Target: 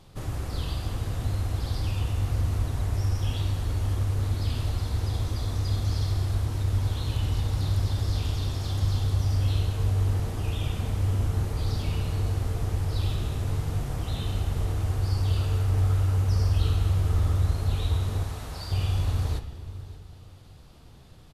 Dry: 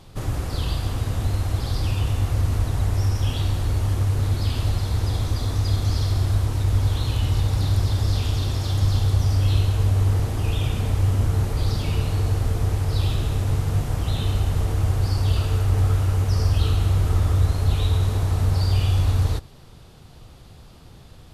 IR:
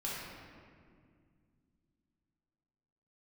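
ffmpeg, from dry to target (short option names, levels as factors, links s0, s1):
-filter_complex "[0:a]asettb=1/sr,asplit=3[s0][s1][s2];[s0]atrim=end=18.234[s3];[s1]atrim=start=18.23:end=18.72,asetpts=PTS-STARTPTS,afade=t=in:d=0.004:c=qsin,afade=t=out:st=0.486:d=0.004:c=qsin,lowshelf=f=400:g=-11[s4];[s2]atrim=start=18.716[s5];[s3][s4]acrossfade=d=0.004:c1=hsin:c2=qsin[s6];[s6][s5]acrossfade=d=0.004:c1=qsin:c2=hsin,aecho=1:1:577:0.112,asplit=2[s7][s8];[1:a]atrim=start_sample=2205,asetrate=57330,aresample=44100,adelay=13[s9];[s8][s9]afir=irnorm=-1:irlink=0,volume=0.299[s10];[s7][s10]amix=inputs=2:normalize=0,volume=0.501"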